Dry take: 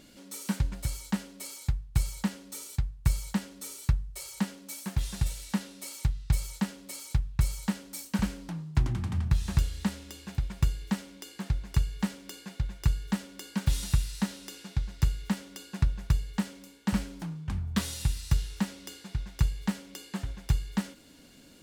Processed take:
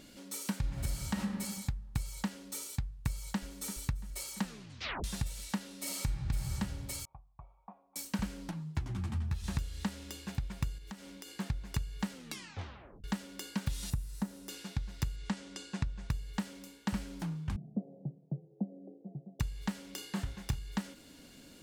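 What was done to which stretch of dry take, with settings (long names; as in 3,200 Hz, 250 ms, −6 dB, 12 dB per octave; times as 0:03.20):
0:00.59–0:01.20: thrown reverb, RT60 1.1 s, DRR −2 dB
0:03.08–0:03.76: delay throw 340 ms, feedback 65%, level −15.5 dB
0:04.42: tape stop 0.62 s
0:05.77–0:06.54: thrown reverb, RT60 1.4 s, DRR −3.5 dB
0:07.05–0:07.96: formant resonators in series a
0:08.51–0:09.44: string-ensemble chorus
0:10.78–0:11.37: downward compressor 4 to 1, threshold −44 dBFS
0:12.12: tape stop 0.92 s
0:13.90–0:14.49: parametric band 3,300 Hz −13.5 dB 2.6 octaves
0:15.16–0:16.10: low-pass filter 8,900 Hz 24 dB per octave
0:17.56–0:19.40: Chebyshev band-pass filter 140–720 Hz, order 5
0:19.95–0:20.59: double-tracking delay 30 ms −6.5 dB
whole clip: downward compressor 5 to 1, threshold −31 dBFS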